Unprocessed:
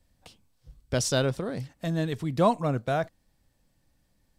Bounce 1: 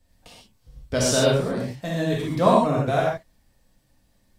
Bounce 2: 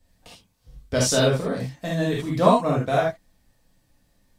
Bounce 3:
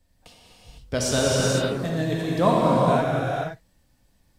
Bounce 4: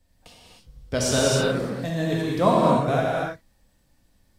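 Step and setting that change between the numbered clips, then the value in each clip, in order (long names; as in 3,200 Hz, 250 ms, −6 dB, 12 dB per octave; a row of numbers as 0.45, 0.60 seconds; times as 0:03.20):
reverb whose tail is shaped and stops, gate: 160, 100, 530, 340 milliseconds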